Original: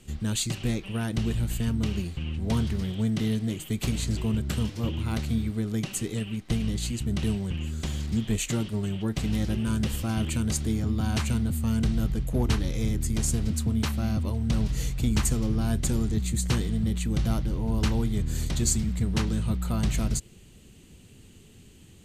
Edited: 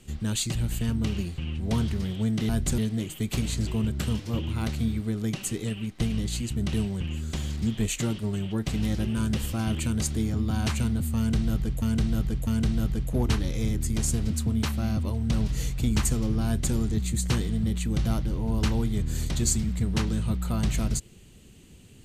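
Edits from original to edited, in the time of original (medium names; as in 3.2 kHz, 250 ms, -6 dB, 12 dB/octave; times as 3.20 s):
0.55–1.34 s: delete
11.67–12.32 s: loop, 3 plays
15.66–15.95 s: copy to 3.28 s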